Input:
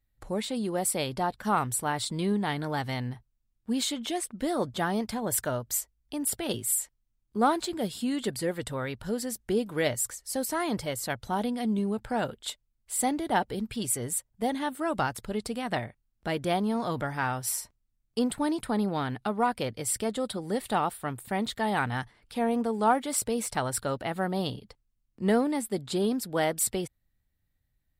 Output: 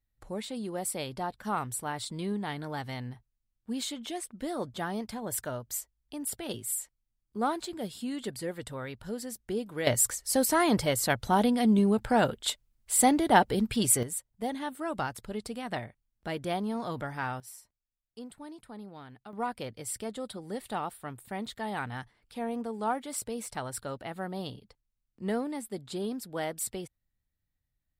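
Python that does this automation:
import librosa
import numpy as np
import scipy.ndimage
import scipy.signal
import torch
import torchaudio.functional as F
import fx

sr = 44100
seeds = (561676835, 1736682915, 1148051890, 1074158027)

y = fx.gain(x, sr, db=fx.steps((0.0, -5.5), (9.87, 5.0), (14.03, -4.5), (17.4, -17.0), (19.33, -7.0)))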